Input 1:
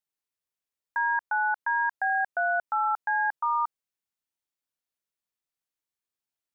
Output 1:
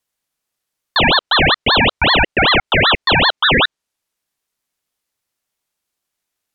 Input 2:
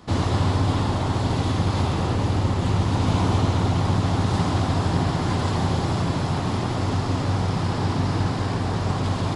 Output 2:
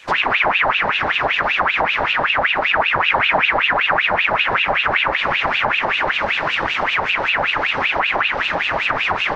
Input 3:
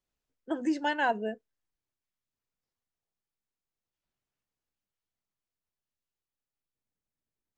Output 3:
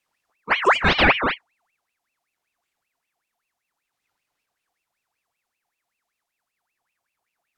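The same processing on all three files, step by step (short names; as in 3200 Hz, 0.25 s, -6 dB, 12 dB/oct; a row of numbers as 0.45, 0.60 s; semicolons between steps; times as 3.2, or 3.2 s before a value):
treble ducked by the level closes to 1200 Hz, closed at -17.5 dBFS; ring modulator with a swept carrier 1700 Hz, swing 60%, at 5.2 Hz; normalise peaks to -3 dBFS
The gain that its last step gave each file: +16.5, +6.5, +14.5 dB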